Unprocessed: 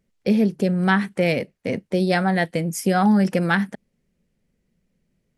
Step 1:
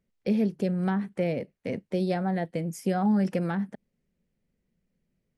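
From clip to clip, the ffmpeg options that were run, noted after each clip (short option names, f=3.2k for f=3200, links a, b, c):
-filter_complex "[0:a]highshelf=f=5k:g=-5,acrossover=split=890[a][b];[b]acompressor=threshold=-33dB:ratio=10[c];[a][c]amix=inputs=2:normalize=0,volume=-6.5dB"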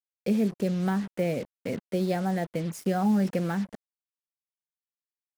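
-af "acrusher=bits=6:mix=0:aa=0.5"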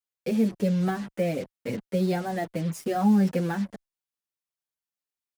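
-filter_complex "[0:a]asplit=2[a][b];[b]adelay=6.9,afreqshift=-1.6[c];[a][c]amix=inputs=2:normalize=1,volume=4dB"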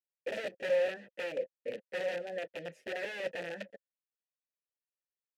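-filter_complex "[0:a]aeval=exprs='(mod(11.9*val(0)+1,2)-1)/11.9':c=same,asplit=3[a][b][c];[a]bandpass=f=530:t=q:w=8,volume=0dB[d];[b]bandpass=f=1.84k:t=q:w=8,volume=-6dB[e];[c]bandpass=f=2.48k:t=q:w=8,volume=-9dB[f];[d][e][f]amix=inputs=3:normalize=0,volume=2dB"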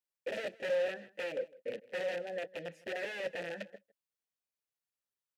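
-af "asoftclip=type=tanh:threshold=-26dB,aecho=1:1:157:0.0841"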